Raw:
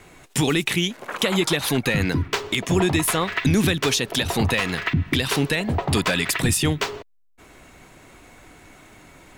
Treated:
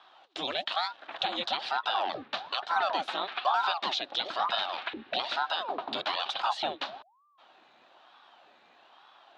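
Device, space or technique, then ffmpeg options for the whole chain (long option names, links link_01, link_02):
voice changer toy: -af "aeval=exprs='val(0)*sin(2*PI*660*n/s+660*0.8/1.1*sin(2*PI*1.1*n/s))':channel_layout=same,highpass=440,equalizer=frequency=460:width_type=q:width=4:gain=-9,equalizer=frequency=750:width_type=q:width=4:gain=6,equalizer=frequency=2100:width_type=q:width=4:gain=-7,equalizer=frequency=3800:width_type=q:width=4:gain=8,lowpass=frequency=4200:width=0.5412,lowpass=frequency=4200:width=1.3066,volume=-6.5dB"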